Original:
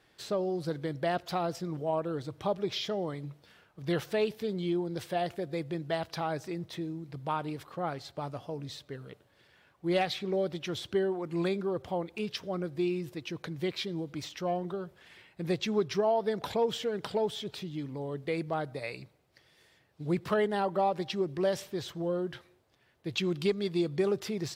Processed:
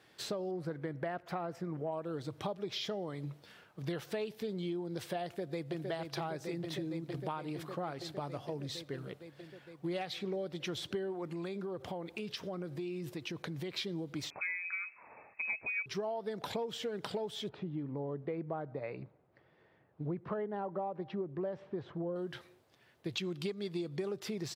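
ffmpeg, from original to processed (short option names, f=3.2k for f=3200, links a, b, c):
-filter_complex "[0:a]asettb=1/sr,asplit=3[a][b][c];[a]atrim=end=0.514[d];[b]atrim=start=0.51:end=1.92,asetpts=PTS-STARTPTS,afade=t=in:d=0.004:c=qsin,afade=t=out:st=1.406:d=0.004:c=qsin,highshelf=f=2.7k:t=q:w=1.5:g=-9.5[e];[c]atrim=start=1.916[f];[d][e]acrossfade=d=0.004:c1=hsin:c2=qsin[g];[g][f]acrossfade=d=0.004:c1=qsin:c2=hsin,asplit=2[h][i];[i]afade=t=in:st=5.25:d=0.01,afade=t=out:st=5.89:d=0.01,aecho=0:1:460|920|1380|1840|2300|2760|3220|3680|4140|4600|5060|5520:0.530884|0.424708|0.339766|0.271813|0.21745|0.17396|0.139168|0.111335|0.0890676|0.0712541|0.0570033|0.0456026[j];[h][j]amix=inputs=2:normalize=0,asettb=1/sr,asplit=3[k][l][m];[k]atrim=end=11.324[n];[l]atrim=start=11.32:end=13.74,asetpts=PTS-STARTPTS,afade=t=in:d=0.004:c=qsin,afade=t=out:st=2.416:d=0.004:c=qsin,acompressor=threshold=-37dB:ratio=6:attack=3.2:release=140:knee=1:detection=peak[o];[m]atrim=start=13.736[p];[n][o]acrossfade=d=0.004:c1=hsin:c2=qsin[q];[q][p]acrossfade=d=0.004:c1=qsin:c2=hsin,asettb=1/sr,asplit=3[r][s][t];[r]atrim=end=14.304[u];[s]atrim=start=14.3:end=15.86,asetpts=PTS-STARTPTS,afade=t=in:d=0.004:c=qsin,afade=t=out:st=1.556:d=0.004:c=qsin,lowpass=f=2.3k:t=q:w=0.5098,lowpass=f=2.3k:t=q:w=0.6013,lowpass=f=2.3k:t=q:w=0.9,lowpass=f=2.3k:t=q:w=2.563,afreqshift=-2700[v];[t]atrim=start=15.856[w];[u][v]acrossfade=d=0.004:c1=hsin:c2=qsin[x];[x][w]acrossfade=d=0.004:c1=qsin:c2=hsin,asettb=1/sr,asplit=3[y][z][aa];[y]atrim=end=17.494[ab];[z]atrim=start=17.49:end=22.16,asetpts=PTS-STARTPTS,afade=t=in:d=0.004:c=qsin,afade=t=out:st=4.666:d=0.004:c=qsin,lowpass=1.3k[ac];[aa]atrim=start=22.156[ad];[ab][ac]acrossfade=d=0.004:c1=hsin:c2=qsin[ae];[ae][ad]acrossfade=d=0.004:c1=qsin:c2=hsin,highpass=97,acompressor=threshold=-37dB:ratio=6,volume=2dB"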